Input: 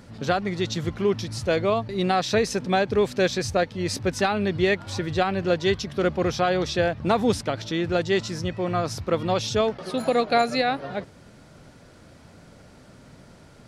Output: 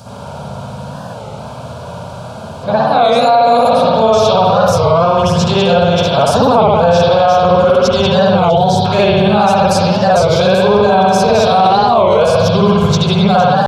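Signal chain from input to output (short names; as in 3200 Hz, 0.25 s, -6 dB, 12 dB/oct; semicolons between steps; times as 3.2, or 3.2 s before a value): whole clip reversed; HPF 110 Hz 12 dB/oct; fixed phaser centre 790 Hz, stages 4; small resonant body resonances 950/1600 Hz, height 7 dB; in parallel at +1 dB: compressor, threshold -39 dBFS, peak gain reduction 20.5 dB; on the sum: spring tank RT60 1.5 s, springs 58 ms, chirp 40 ms, DRR -9.5 dB; spectral gain 8.5–8.85, 950–3000 Hz -16 dB; maximiser +11.5 dB; record warp 33 1/3 rpm, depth 160 cents; gain -1 dB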